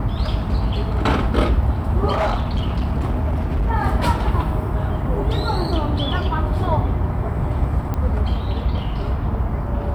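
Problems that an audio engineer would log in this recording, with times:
2.11–3.71 s: clipped -16 dBFS
7.94 s: pop -13 dBFS

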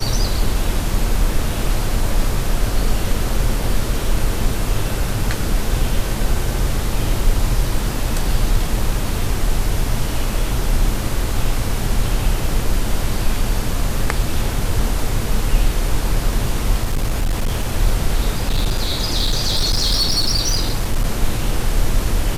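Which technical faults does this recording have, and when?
16.83–17.72 s: clipped -14 dBFS
18.43–21.06 s: clipped -12 dBFS

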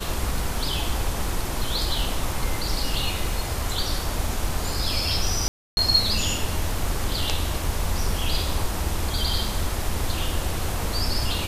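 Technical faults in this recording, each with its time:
5.48–5.77 s: dropout 291 ms

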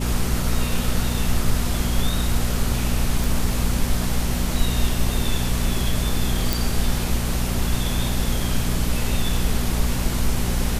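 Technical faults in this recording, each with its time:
hum 60 Hz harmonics 4 -25 dBFS
3.24 s: pop
6.53 s: pop

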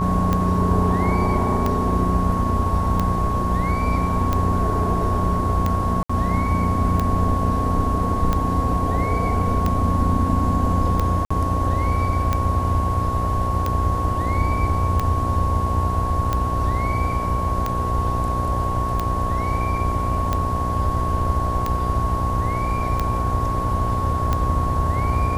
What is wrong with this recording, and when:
buzz 60 Hz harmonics 17 -26 dBFS
tick 45 rpm -9 dBFS
whine 1.1 kHz -24 dBFS
6.03–6.09 s: dropout 65 ms
11.25–11.30 s: dropout 55 ms

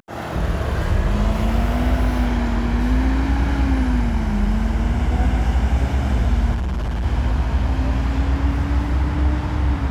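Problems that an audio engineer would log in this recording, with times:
6.54–7.06 s: clipped -19.5 dBFS

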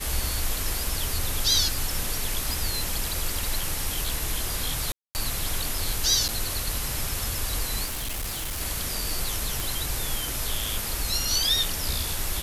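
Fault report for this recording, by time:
2.53 s: pop
4.92–5.15 s: dropout 229 ms
6.28–6.29 s: dropout 7.7 ms
7.85–8.62 s: clipped -27.5 dBFS
9.60 s: pop

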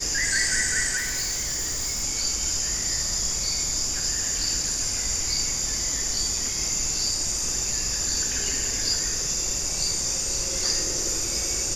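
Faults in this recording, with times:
0.97–2.04 s: clipped -24 dBFS

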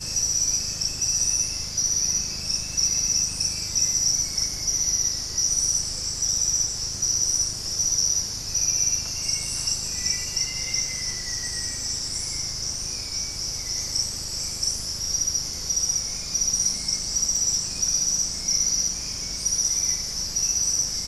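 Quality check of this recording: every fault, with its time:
17.36 s: dropout 3.8 ms

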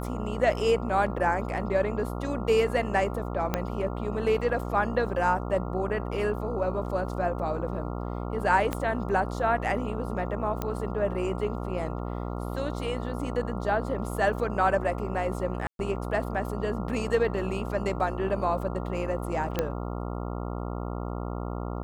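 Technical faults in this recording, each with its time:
buzz 60 Hz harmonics 23 -33 dBFS
3.54 s: pop -11 dBFS
8.73 s: pop -14 dBFS
10.62 s: pop -15 dBFS
15.67–15.79 s: dropout 122 ms
19.59 s: pop -12 dBFS

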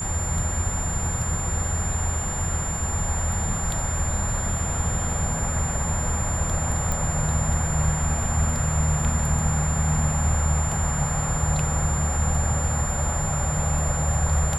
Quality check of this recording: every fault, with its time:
whine 7.2 kHz -29 dBFS
6.92 s: pop

